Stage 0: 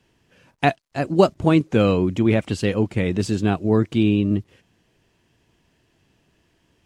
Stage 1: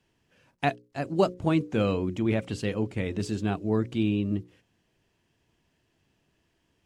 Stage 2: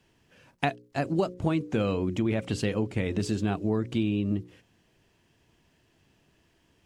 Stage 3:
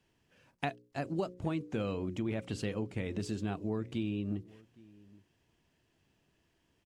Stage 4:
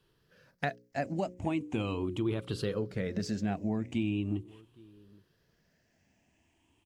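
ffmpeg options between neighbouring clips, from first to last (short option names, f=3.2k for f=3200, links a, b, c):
-af "bandreject=f=60:t=h:w=6,bandreject=f=120:t=h:w=6,bandreject=f=180:t=h:w=6,bandreject=f=240:t=h:w=6,bandreject=f=300:t=h:w=6,bandreject=f=360:t=h:w=6,bandreject=f=420:t=h:w=6,bandreject=f=480:t=h:w=6,bandreject=f=540:t=h:w=6,volume=-7.5dB"
-af "acompressor=threshold=-29dB:ratio=5,volume=5.5dB"
-filter_complex "[0:a]asplit=2[a][b];[b]adelay=816.3,volume=-23dB,highshelf=f=4k:g=-18.4[c];[a][c]amix=inputs=2:normalize=0,volume=-8dB"
-af "afftfilt=real='re*pow(10,10/40*sin(2*PI*(0.62*log(max(b,1)*sr/1024/100)/log(2)-(0.4)*(pts-256)/sr)))':imag='im*pow(10,10/40*sin(2*PI*(0.62*log(max(b,1)*sr/1024/100)/log(2)-(0.4)*(pts-256)/sr)))':win_size=1024:overlap=0.75,volume=1.5dB"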